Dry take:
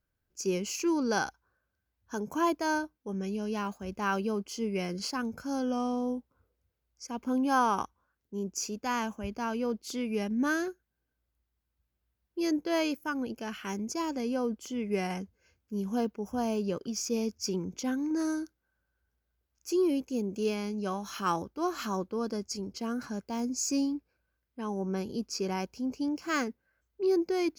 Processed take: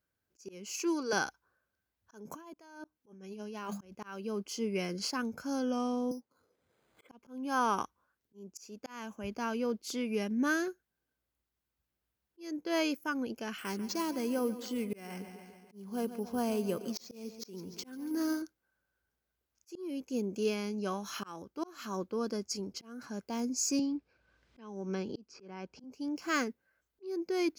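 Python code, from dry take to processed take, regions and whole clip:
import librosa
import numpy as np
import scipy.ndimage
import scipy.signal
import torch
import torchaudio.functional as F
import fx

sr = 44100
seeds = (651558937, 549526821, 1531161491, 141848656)

y = fx.chain(x, sr, fx.highpass(hz=390.0, slope=12),
    fx.peak_eq(hz=8300.0, db=3.5, octaves=0.41),
    fx.comb(ms=2.7, depth=0.42), at=(0.73, 1.13))
y = fx.chain(y, sr, fx.hum_notches(base_hz=50, count=4),
    fx.over_compress(threshold_db=-40.0, ratio=-1.0), at=(2.25, 3.95))
y = fx.chain(y, sr, fx.highpass(hz=160.0, slope=12),
    fx.resample_bad(factor=8, down='filtered', up='hold'),
    fx.band_squash(depth_pct=100), at=(6.11, 7.09))
y = fx.chain(y, sr, fx.echo_feedback(ms=142, feedback_pct=58, wet_db=-15.0),
    fx.resample_bad(factor=4, down='none', up='hold'), at=(13.58, 18.42))
y = fx.chain(y, sr, fx.air_absorb(metres=130.0),
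    fx.band_squash(depth_pct=100), at=(23.79, 25.84))
y = fx.highpass(y, sr, hz=180.0, slope=6)
y = fx.dynamic_eq(y, sr, hz=810.0, q=2.2, threshold_db=-45.0, ratio=4.0, max_db=-4)
y = fx.auto_swell(y, sr, attack_ms=420.0)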